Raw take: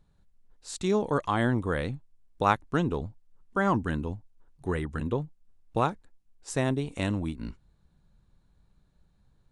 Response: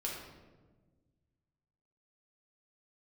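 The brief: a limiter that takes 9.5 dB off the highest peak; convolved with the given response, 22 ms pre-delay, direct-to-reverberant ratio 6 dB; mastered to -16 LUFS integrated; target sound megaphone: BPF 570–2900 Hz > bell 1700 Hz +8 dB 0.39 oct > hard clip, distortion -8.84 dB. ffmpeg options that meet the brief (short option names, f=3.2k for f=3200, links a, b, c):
-filter_complex "[0:a]alimiter=limit=-18dB:level=0:latency=1,asplit=2[a][b];[1:a]atrim=start_sample=2205,adelay=22[c];[b][c]afir=irnorm=-1:irlink=0,volume=-7.5dB[d];[a][d]amix=inputs=2:normalize=0,highpass=570,lowpass=2.9k,equalizer=f=1.7k:t=o:w=0.39:g=8,asoftclip=type=hard:threshold=-28dB,volume=20.5dB"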